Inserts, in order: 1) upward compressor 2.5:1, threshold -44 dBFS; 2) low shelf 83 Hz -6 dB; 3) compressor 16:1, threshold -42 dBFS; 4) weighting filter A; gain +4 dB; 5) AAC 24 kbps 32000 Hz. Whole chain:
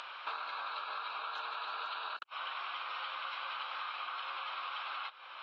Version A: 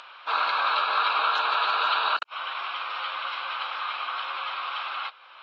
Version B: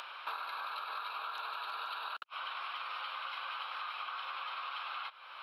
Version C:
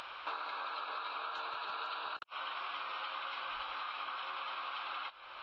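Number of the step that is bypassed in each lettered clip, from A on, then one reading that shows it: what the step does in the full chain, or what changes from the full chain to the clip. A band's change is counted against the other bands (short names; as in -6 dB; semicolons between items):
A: 3, mean gain reduction 10.5 dB; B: 5, 500 Hz band -1.5 dB; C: 4, 500 Hz band +3.0 dB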